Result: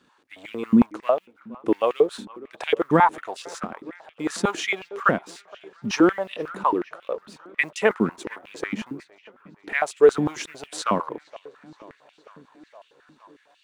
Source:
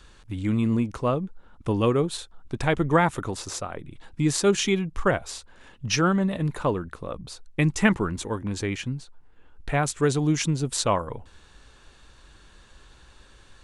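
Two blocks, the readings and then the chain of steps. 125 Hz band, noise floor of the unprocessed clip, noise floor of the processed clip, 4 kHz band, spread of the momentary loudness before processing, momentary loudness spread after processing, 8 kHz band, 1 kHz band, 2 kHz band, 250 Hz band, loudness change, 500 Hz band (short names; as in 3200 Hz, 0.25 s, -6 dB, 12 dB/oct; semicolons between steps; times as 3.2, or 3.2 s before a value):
-10.0 dB, -53 dBFS, -62 dBFS, -3.0 dB, 16 LU, 19 LU, -7.5 dB, +4.5 dB, +2.5 dB, +0.5 dB, +1.5 dB, +3.5 dB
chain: G.711 law mismatch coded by A; high shelf 3900 Hz -8.5 dB; dark delay 0.467 s, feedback 69%, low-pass 3800 Hz, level -22 dB; stepped high-pass 11 Hz 220–2800 Hz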